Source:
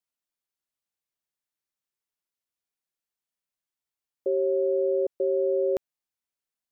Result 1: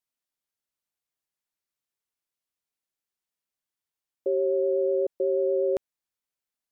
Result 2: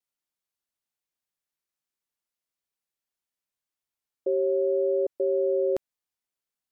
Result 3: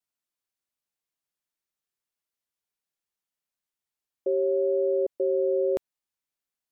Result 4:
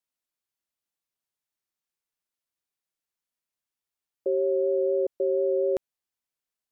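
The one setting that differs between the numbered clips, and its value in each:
vibrato, rate: 8.2 Hz, 0.45 Hz, 0.69 Hz, 4.1 Hz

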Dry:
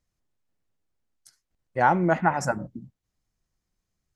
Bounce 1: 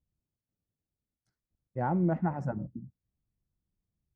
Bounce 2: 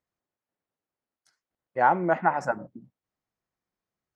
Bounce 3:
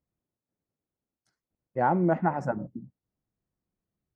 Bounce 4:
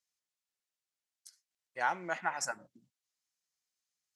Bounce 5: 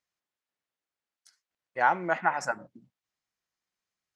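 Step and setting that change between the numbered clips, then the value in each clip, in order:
band-pass filter, frequency: 100 Hz, 820 Hz, 280 Hz, 6.4 kHz, 2.2 kHz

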